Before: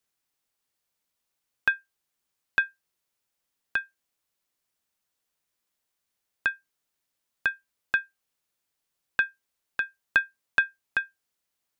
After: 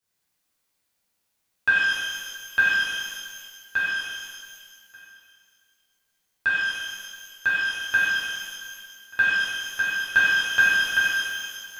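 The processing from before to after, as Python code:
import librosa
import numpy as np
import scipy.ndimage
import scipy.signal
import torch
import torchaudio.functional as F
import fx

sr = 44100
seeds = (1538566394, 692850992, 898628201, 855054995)

p1 = x + fx.echo_single(x, sr, ms=1185, db=-23.0, dry=0)
p2 = fx.rev_shimmer(p1, sr, seeds[0], rt60_s=1.8, semitones=12, shimmer_db=-8, drr_db=-11.0)
y = F.gain(torch.from_numpy(p2), -5.0).numpy()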